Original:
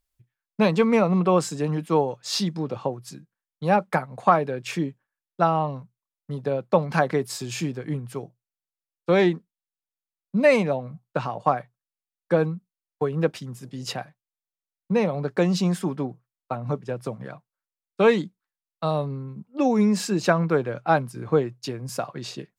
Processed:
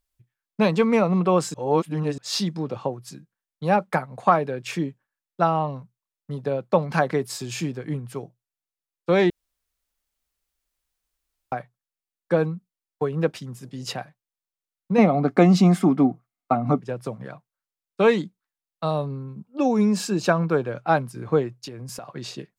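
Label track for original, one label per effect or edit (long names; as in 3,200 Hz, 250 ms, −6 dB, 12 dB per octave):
1.540000	2.180000	reverse
9.300000	11.520000	fill with room tone
14.980000	16.800000	hollow resonant body resonances 260/710/1,200/2,100 Hz, height 13 dB, ringing for 25 ms
18.940000	20.710000	notch filter 2,000 Hz, Q 6.8
21.480000	22.130000	downward compressor 10 to 1, threshold −32 dBFS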